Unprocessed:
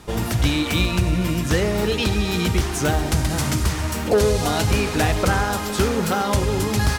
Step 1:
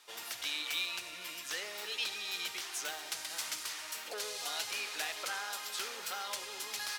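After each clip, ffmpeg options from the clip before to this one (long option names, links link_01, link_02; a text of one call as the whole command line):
ffmpeg -i in.wav -filter_complex "[0:a]acrossover=split=340 4900:gain=0.178 1 0.224[link_01][link_02][link_03];[link_01][link_02][link_03]amix=inputs=3:normalize=0,acontrast=79,aderivative,volume=-8dB" out.wav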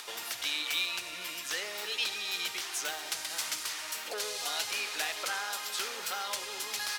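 ffmpeg -i in.wav -af "acompressor=mode=upward:threshold=-40dB:ratio=2.5,volume=4dB" out.wav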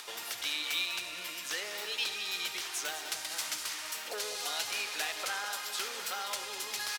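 ffmpeg -i in.wav -af "aecho=1:1:201:0.282,volume=-1.5dB" out.wav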